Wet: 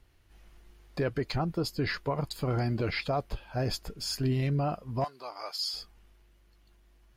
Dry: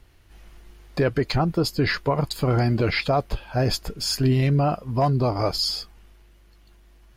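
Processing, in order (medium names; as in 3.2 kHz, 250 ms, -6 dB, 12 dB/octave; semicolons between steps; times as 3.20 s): 5.04–5.74 s: high-pass 1 kHz 12 dB/octave; trim -8.5 dB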